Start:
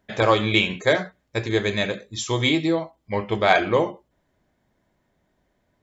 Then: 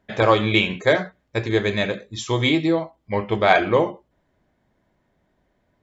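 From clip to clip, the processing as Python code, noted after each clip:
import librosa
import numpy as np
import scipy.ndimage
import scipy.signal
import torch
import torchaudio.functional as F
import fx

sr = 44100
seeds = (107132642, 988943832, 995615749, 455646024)

y = fx.high_shelf(x, sr, hz=6000.0, db=-10.5)
y = y * librosa.db_to_amplitude(2.0)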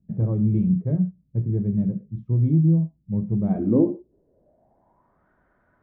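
y = fx.filter_sweep_lowpass(x, sr, from_hz=170.0, to_hz=1400.0, start_s=3.36, end_s=5.3, q=5.4)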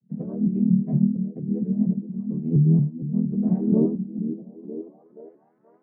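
y = fx.chord_vocoder(x, sr, chord='major triad', root=51)
y = fx.echo_stepped(y, sr, ms=476, hz=240.0, octaves=0.7, feedback_pct=70, wet_db=-7.0)
y = fx.vibrato_shape(y, sr, shape='saw_up', rate_hz=4.3, depth_cents=160.0)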